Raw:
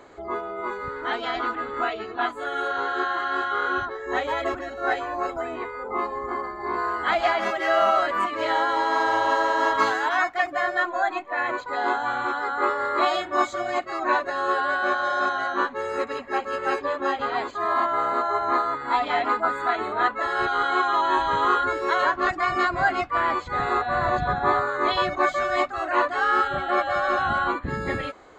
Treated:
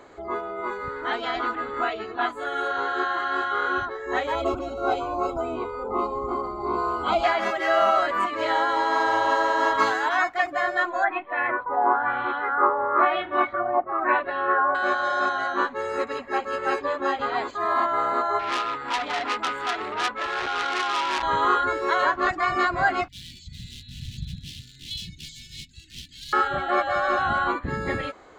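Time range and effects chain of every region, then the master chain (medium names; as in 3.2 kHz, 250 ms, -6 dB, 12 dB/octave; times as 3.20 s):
4.35–7.24 s: bass shelf 350 Hz +7 dB + upward compressor, threshold -27 dBFS + Butterworth band-stop 1.8 kHz, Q 1.9
11.04–14.75 s: LFO low-pass sine 1 Hz 890–3300 Hz + distance through air 310 m
18.39–21.23 s: band-stop 660 Hz, Q 11 + transformer saturation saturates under 3.4 kHz
23.08–26.33 s: hard clipper -20.5 dBFS + inverse Chebyshev band-stop 510–1200 Hz, stop band 70 dB
whole clip: none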